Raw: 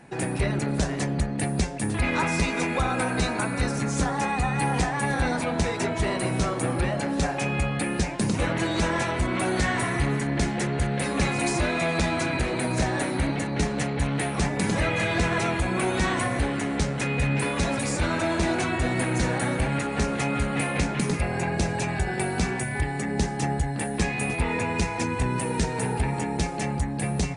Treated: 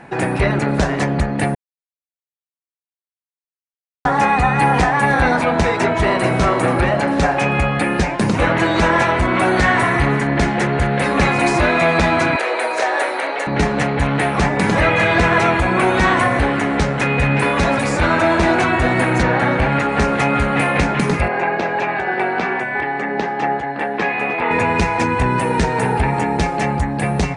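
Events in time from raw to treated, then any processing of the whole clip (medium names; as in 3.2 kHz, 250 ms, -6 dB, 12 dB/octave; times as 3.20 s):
1.55–4.05 s: mute
5.78–6.39 s: echo throw 440 ms, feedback 45%, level -9.5 dB
12.36–13.47 s: Chebyshev high-pass 460 Hz, order 3
19.22–19.87 s: low-pass 3.8 kHz -> 8.2 kHz
21.28–24.51 s: band-pass 310–3100 Hz
whole clip: low-pass 3.7 kHz 6 dB/octave; peaking EQ 1.2 kHz +7 dB 2.8 oct; trim +6.5 dB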